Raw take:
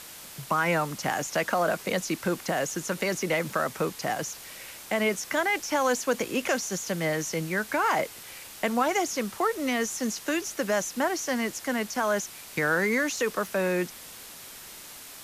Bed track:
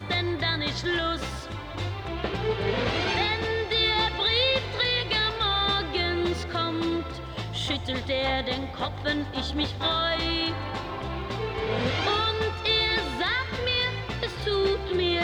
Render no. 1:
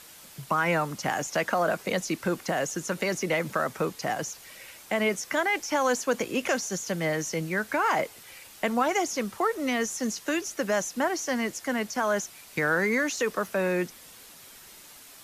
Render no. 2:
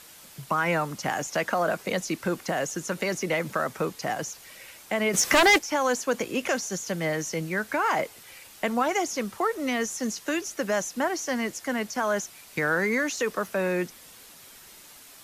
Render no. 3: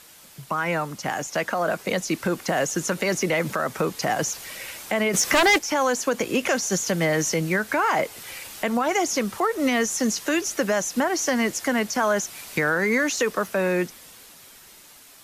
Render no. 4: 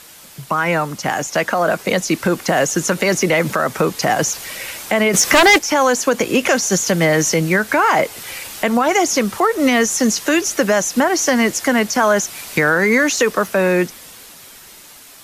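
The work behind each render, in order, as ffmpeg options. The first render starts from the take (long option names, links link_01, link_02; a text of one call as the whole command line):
ffmpeg -i in.wav -af "afftdn=noise_reduction=6:noise_floor=-45" out.wav
ffmpeg -i in.wav -filter_complex "[0:a]asplit=3[link_01][link_02][link_03];[link_01]afade=type=out:start_time=5.13:duration=0.02[link_04];[link_02]aeval=exprs='0.211*sin(PI/2*2.82*val(0)/0.211)':channel_layout=same,afade=type=in:start_time=5.13:duration=0.02,afade=type=out:start_time=5.57:duration=0.02[link_05];[link_03]afade=type=in:start_time=5.57:duration=0.02[link_06];[link_04][link_05][link_06]amix=inputs=3:normalize=0" out.wav
ffmpeg -i in.wav -af "dynaudnorm=framelen=280:gausssize=17:maxgain=11dB,alimiter=limit=-13dB:level=0:latency=1:release=257" out.wav
ffmpeg -i in.wav -af "volume=7.5dB" out.wav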